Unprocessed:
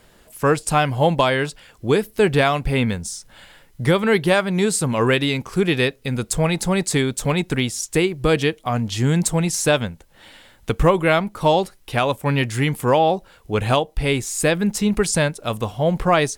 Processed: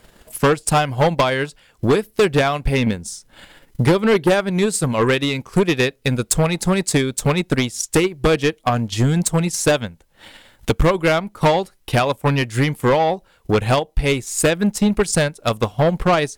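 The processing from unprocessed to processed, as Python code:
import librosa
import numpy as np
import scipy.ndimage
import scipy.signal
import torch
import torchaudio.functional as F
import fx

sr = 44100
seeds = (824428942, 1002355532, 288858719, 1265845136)

y = fx.peak_eq(x, sr, hz=300.0, db=6.0, octaves=1.1, at=(2.86, 4.5))
y = fx.transient(y, sr, attack_db=11, sustain_db=-7)
y = 10.0 ** (-11.5 / 20.0) * np.tanh(y / 10.0 ** (-11.5 / 20.0))
y = F.gain(torch.from_numpy(y), 1.5).numpy()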